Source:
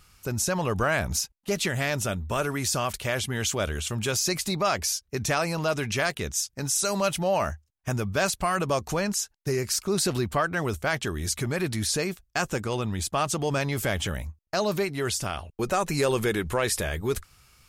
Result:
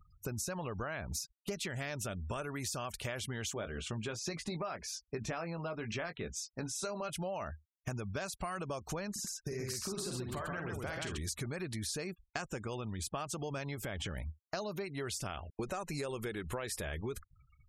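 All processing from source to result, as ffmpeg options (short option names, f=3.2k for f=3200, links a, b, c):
-filter_complex "[0:a]asettb=1/sr,asplit=3[a][b][c];[a]atrim=end=3.534[d];[b]atrim=start=3.53:end=7.1,asetpts=PTS-STARTPTS,afade=t=in:d=0.004:c=qsin,afade=t=out:st=3.566:d=0.004:c=qsin,lowpass=f=2.2k:p=1,equalizer=f=88:t=o:w=0.46:g=-10.5,asplit=2[e][f];[f]adelay=18,volume=-8dB[g];[e][g]amix=inputs=2:normalize=0,atrim=end_sample=157437[h];[c]atrim=start=7.096[i];[d][h]acrossfade=d=0.004:c1=hsin:c2=qsin[j];[j][i]acrossfade=d=0.004:c1=qsin:c2=hsin,asettb=1/sr,asplit=3[k][l][m];[k]atrim=end=9.114[n];[l]atrim=start=9.11:end=11.18,asetpts=PTS-STARTPTS,afade=t=in:d=0.004:c=qsin,afade=t=out:st=2.066:d=0.004:c=qsin,acompressor=threshold=-30dB:ratio=6:attack=3.2:release=140:knee=1:detection=peak,aecho=1:1:47|56|66|78|134:0.531|0.282|0.2|0.188|0.708,atrim=end_sample=91287,acrusher=bits=5:mode=log:mix=0:aa=0.000001[o];[m]atrim=start=11.176[p];[n][o]acrossfade=d=0.004:c1=hsin:c2=qsin[q];[q][p]acrossfade=d=0.004:c1=qsin:c2=hsin,asettb=1/sr,asplit=3[r][s][t];[r]atrim=end=13.754[u];[s]atrim=start=13.75:end=14.17,asetpts=PTS-STARTPTS,afade=t=in:d=0.004:c=qsin,afade=t=out:st=0.416:d=0.004:c=qsin,acompressor=threshold=-28dB:ratio=2.5:attack=3.2:release=140:knee=1:detection=peak,adynamicequalizer=threshold=0.00398:dfrequency=5800:dqfactor=0.7:tfrequency=5800:tqfactor=0.7:attack=5:release=100:ratio=0.375:range=2.5:mode=cutabove:tftype=highshelf[v];[t]atrim=start=14.166[w];[u][v]acrossfade=d=0.004:c1=hsin:c2=qsin[x];[x][w]acrossfade=d=0.004:c1=qsin:c2=hsin,acompressor=threshold=-32dB:ratio=16,afftfilt=real='re*gte(hypot(re,im),0.00398)':imag='im*gte(hypot(re,im),0.00398)':win_size=1024:overlap=0.75,volume=-3dB"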